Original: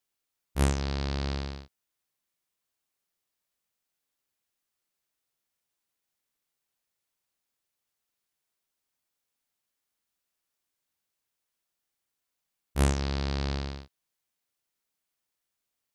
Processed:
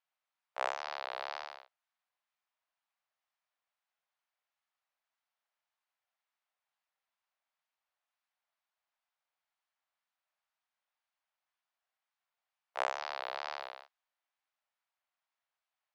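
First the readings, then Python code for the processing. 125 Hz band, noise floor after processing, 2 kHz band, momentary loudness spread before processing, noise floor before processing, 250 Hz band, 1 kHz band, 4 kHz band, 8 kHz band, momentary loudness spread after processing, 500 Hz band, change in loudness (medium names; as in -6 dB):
under -40 dB, under -85 dBFS, -1.0 dB, 12 LU, -85 dBFS, under -30 dB, +2.0 dB, -6.5 dB, -16.0 dB, 12 LU, -5.5 dB, -8.5 dB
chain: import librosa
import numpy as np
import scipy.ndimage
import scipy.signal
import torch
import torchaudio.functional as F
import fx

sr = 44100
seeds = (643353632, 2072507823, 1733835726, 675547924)

y = scipy.signal.sosfilt(scipy.signal.butter(6, 650.0, 'highpass', fs=sr, output='sos'), x)
y = fx.spacing_loss(y, sr, db_at_10k=30)
y = fx.wow_flutter(y, sr, seeds[0], rate_hz=2.1, depth_cents=120.0)
y = y * librosa.db_to_amplitude(5.0)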